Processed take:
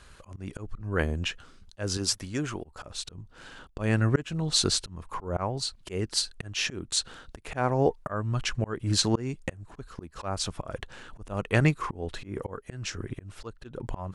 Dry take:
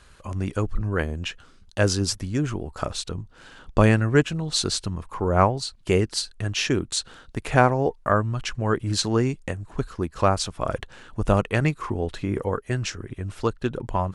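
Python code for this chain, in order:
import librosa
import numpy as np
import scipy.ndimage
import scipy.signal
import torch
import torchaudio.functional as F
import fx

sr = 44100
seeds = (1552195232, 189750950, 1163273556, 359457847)

y = fx.low_shelf(x, sr, hz=320.0, db=-10.5, at=(1.97, 2.64))
y = fx.auto_swell(y, sr, attack_ms=290.0)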